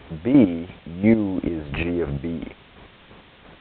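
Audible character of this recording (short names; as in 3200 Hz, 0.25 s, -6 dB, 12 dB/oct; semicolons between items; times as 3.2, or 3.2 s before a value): chopped level 2.9 Hz, depth 65%, duty 30%; a quantiser's noise floor 8-bit, dither triangular; A-law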